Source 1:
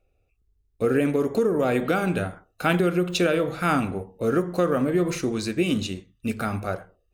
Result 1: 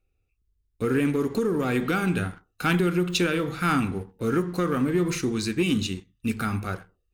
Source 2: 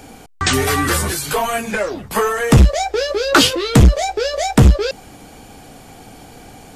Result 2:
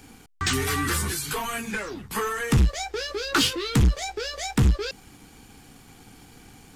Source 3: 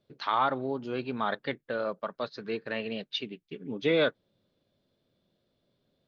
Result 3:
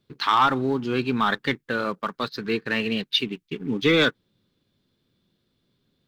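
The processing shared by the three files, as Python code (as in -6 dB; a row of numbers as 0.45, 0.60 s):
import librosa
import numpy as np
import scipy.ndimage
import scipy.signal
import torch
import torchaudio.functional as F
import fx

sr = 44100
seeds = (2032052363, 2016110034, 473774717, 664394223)

y = fx.leveller(x, sr, passes=1)
y = fx.peak_eq(y, sr, hz=610.0, db=-13.5, octaves=0.68)
y = y * 10.0 ** (-26 / 20.0) / np.sqrt(np.mean(np.square(y)))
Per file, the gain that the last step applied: -2.0, -10.0, +7.5 dB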